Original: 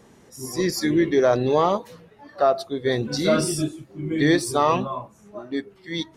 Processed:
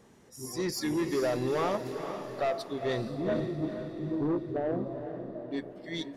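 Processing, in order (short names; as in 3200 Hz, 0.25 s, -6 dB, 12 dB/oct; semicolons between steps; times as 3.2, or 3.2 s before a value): 3.08–5.51 steep low-pass 720 Hz 48 dB/oct; soft clip -18 dBFS, distortion -11 dB; diffused feedback echo 0.45 s, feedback 51%, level -8 dB; gain -6.5 dB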